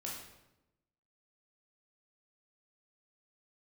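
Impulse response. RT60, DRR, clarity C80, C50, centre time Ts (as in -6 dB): 0.95 s, -4.0 dB, 5.0 dB, 2.0 dB, 52 ms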